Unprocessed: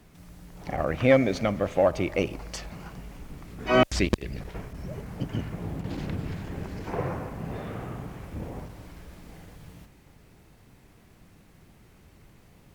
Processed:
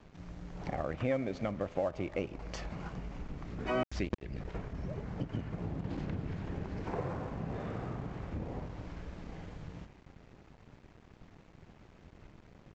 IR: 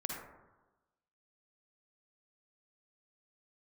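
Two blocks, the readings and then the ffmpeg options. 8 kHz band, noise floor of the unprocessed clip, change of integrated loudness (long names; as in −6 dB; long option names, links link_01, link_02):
below −10 dB, −56 dBFS, −10.5 dB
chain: -af "highshelf=frequency=3400:gain=-11.5,acompressor=threshold=-41dB:ratio=2.5,aresample=16000,aeval=exprs='sgn(val(0))*max(abs(val(0))-0.00126,0)':channel_layout=same,aresample=44100,volume=4dB"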